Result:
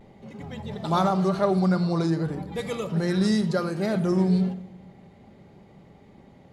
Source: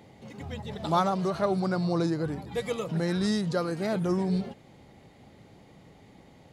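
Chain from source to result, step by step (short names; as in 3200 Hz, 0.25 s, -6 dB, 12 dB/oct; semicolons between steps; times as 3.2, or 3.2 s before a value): vibrato 0.39 Hz 22 cents; shoebox room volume 2700 m³, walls furnished, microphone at 1.2 m; mismatched tape noise reduction decoder only; gain +1.5 dB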